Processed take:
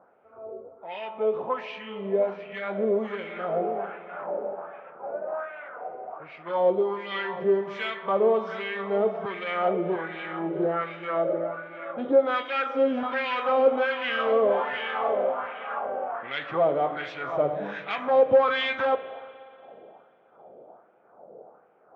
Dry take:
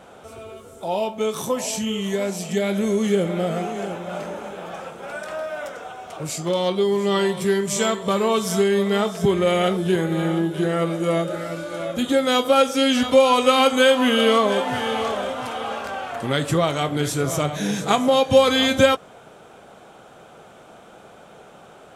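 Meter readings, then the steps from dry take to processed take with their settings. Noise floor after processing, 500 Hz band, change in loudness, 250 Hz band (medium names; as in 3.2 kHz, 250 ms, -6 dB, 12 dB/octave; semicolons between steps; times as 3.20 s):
-58 dBFS, -4.0 dB, -6.0 dB, -11.5 dB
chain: level-controlled noise filter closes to 530 Hz, open at -17 dBFS; treble shelf 7.6 kHz -6 dB; in parallel at -12 dB: sine folder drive 11 dB, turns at -4 dBFS; on the sum: LFO band-pass sine 1.3 Hz 490–2400 Hz; distance through air 250 m; spring tank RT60 2.5 s, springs 36/60 ms, chirp 35 ms, DRR 14 dB; trim -2 dB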